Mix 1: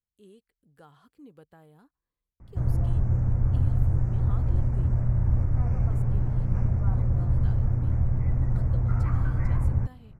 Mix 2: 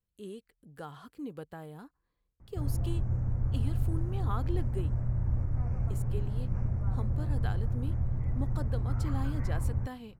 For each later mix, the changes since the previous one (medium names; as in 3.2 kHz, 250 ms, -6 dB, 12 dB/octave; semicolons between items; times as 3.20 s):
speech +9.5 dB; background -6.5 dB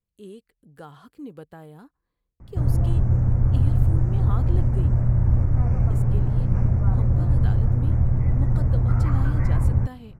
background +10.0 dB; master: add peaking EQ 260 Hz +2 dB 2.9 oct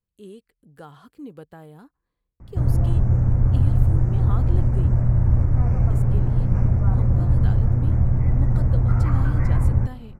reverb: on, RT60 1.6 s